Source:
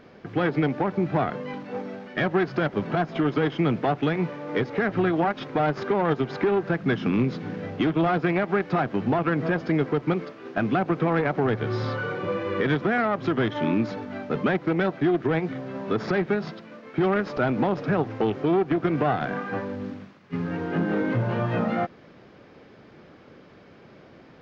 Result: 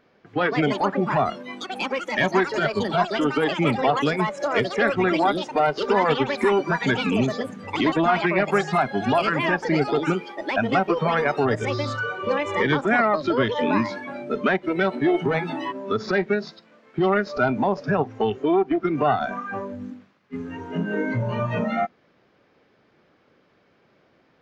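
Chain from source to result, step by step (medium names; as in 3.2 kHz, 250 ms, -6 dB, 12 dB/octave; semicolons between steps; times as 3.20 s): bass shelf 420 Hz -6.5 dB; spectral noise reduction 14 dB; ever faster or slower copies 262 ms, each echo +6 st, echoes 2, each echo -6 dB; trim +6 dB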